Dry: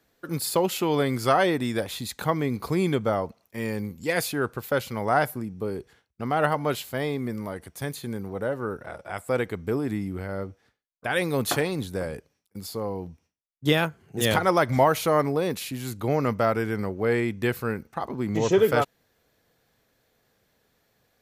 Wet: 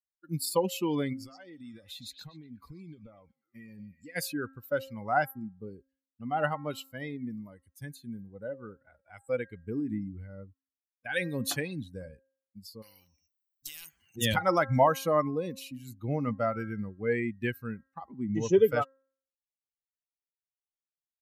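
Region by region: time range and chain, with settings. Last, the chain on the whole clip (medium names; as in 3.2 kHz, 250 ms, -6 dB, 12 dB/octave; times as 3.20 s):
1.13–4.16 s: compression 12:1, threshold -30 dBFS + repeats whose band climbs or falls 122 ms, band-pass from 4.9 kHz, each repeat -0.7 oct, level -3 dB
12.82–14.16 s: treble shelf 6.3 kHz +4 dB + compression 20:1, threshold -23 dBFS + spectrum-flattening compressor 4:1
whole clip: expander on every frequency bin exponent 2; treble shelf 12 kHz -2.5 dB; de-hum 267.9 Hz, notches 7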